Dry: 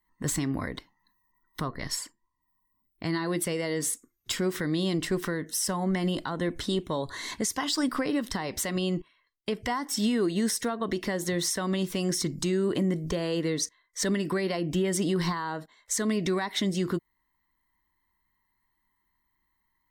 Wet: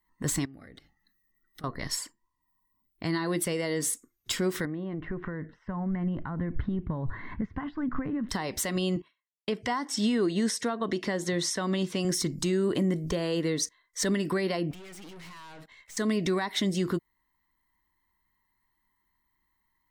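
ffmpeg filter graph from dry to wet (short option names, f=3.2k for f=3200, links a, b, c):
-filter_complex "[0:a]asettb=1/sr,asplit=3[a][b][c];[a]atrim=end=0.454[d];[b]atrim=start=0.45:end=1.64,asetpts=PTS-STARTPTS,afade=t=in:d=0.004:c=qsin,afade=t=out:st=1.186:d=0.004:c=qsin,asuperstop=centerf=990:order=8:qfactor=4,bandreject=f=50:t=h:w=6,bandreject=f=100:t=h:w=6,bandreject=f=150:t=h:w=6,acompressor=threshold=-47dB:ratio=5:attack=3.2:release=140:knee=1:detection=peak[e];[c]atrim=start=1.636[f];[d][e]acrossfade=d=0.004:c1=hsin:c2=qsin[g];[g][f]acrossfade=d=0.004:c1=qsin:c2=hsin,asettb=1/sr,asplit=3[h][i][j];[h]atrim=end=4.654[k];[i]atrim=start=4.65:end=8.29,asetpts=PTS-STARTPTS,afade=t=in:d=0.004:c=qsin,afade=t=out:st=3.636:d=0.004:c=qsin,acompressor=threshold=-32dB:ratio=3:attack=3.2:release=140:knee=1:detection=peak,lowpass=f=1.9k:w=0.5412,lowpass=f=1.9k:w=1.3066,asubboost=boost=10.5:cutoff=160[l];[j]atrim=start=8.286[m];[k][l]acrossfade=d=0.004:c1=hsin:c2=qsin[n];[n][m]acrossfade=d=0.004:c1=qsin:c2=hsin,asettb=1/sr,asplit=3[o][p][q];[o]atrim=end=8.964[r];[p]atrim=start=8.96:end=12.05,asetpts=PTS-STARTPTS,afade=t=in:d=0.004:c=qsin,afade=t=out:st=3.086:d=0.004:c=qsin,highpass=100,lowpass=7.9k,agate=range=-33dB:threshold=-58dB:ratio=3:release=100:detection=peak[s];[q]atrim=start=12.046[t];[r][s]acrossfade=d=0.004:c1=hsin:c2=qsin[u];[u][t]acrossfade=d=0.004:c1=qsin:c2=hsin,asettb=1/sr,asplit=3[v][w][x];[v]atrim=end=14.714[y];[w]atrim=start=14.71:end=15.97,asetpts=PTS-STARTPTS,afade=t=in:d=0.004:c=qsin,afade=t=out:st=1.256:d=0.004:c=qsin,equalizer=f=2.4k:t=o:w=0.82:g=13,acompressor=threshold=-31dB:ratio=8:attack=3.2:release=140:knee=1:detection=peak,aeval=exprs='(tanh(178*val(0)+0.4)-tanh(0.4))/178':c=same[z];[x]atrim=start=15.966[aa];[y][z]acrossfade=d=0.004:c1=hsin:c2=qsin[ab];[ab][aa]acrossfade=d=0.004:c1=qsin:c2=hsin"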